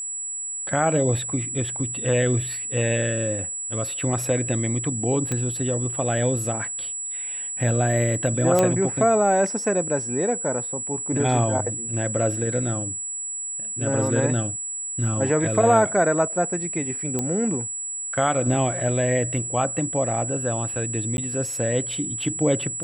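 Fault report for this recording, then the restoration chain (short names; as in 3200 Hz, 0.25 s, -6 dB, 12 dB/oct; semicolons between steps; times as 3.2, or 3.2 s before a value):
tone 7800 Hz -28 dBFS
5.32 pop -12 dBFS
8.59 pop -6 dBFS
17.19 pop -11 dBFS
21.17–21.18 gap 11 ms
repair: de-click; notch 7800 Hz, Q 30; interpolate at 21.17, 11 ms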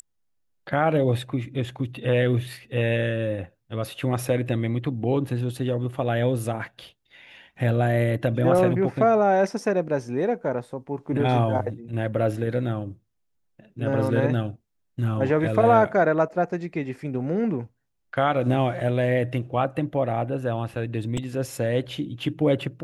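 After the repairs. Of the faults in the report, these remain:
none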